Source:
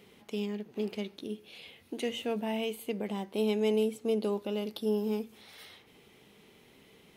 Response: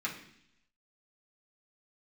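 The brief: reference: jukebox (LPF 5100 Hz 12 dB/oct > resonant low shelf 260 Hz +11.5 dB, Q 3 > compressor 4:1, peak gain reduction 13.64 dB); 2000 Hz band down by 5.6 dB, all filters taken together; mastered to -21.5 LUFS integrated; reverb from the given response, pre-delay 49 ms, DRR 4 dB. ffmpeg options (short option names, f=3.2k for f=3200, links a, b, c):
-filter_complex "[0:a]equalizer=f=2k:t=o:g=-7,asplit=2[a][b];[1:a]atrim=start_sample=2205,adelay=49[c];[b][c]afir=irnorm=-1:irlink=0,volume=-8.5dB[d];[a][d]amix=inputs=2:normalize=0,lowpass=5.1k,lowshelf=f=260:t=q:w=3:g=11.5,acompressor=threshold=-30dB:ratio=4,volume=11dB"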